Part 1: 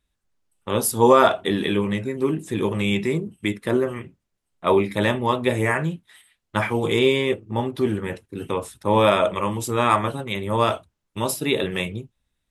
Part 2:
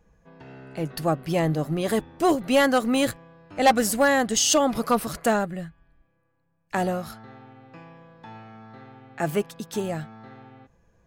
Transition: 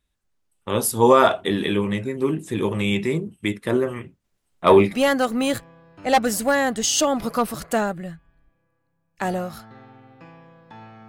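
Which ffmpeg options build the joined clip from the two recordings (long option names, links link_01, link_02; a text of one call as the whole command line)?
ffmpeg -i cue0.wav -i cue1.wav -filter_complex "[0:a]asettb=1/sr,asplit=3[link_01][link_02][link_03];[link_01]atrim=end=4.244[link_04];[link_02]atrim=start=4.24:end=4.96,asetpts=PTS-STARTPTS,afade=type=in:duration=0.004:curve=qsin,afade=type=out:start_time=0.716:duration=0.004:curve=qsin,acontrast=45[link_05];[link_03]atrim=start=4.956[link_06];[link_04][link_05]acrossfade=duration=0.004:curve1=hsin:curve2=qsin[link_07];[link_07][link_06]acrossfade=duration=0.004:curve1=qsin:curve2=hsin,apad=whole_dur=11.08,atrim=end=11.08,atrim=end=4.96,asetpts=PTS-STARTPTS[link_08];[1:a]atrim=start=2.39:end=8.61,asetpts=PTS-STARTPTS[link_09];[link_08][link_09]acrossfade=duration=0.1:curve1=tri:curve2=tri" out.wav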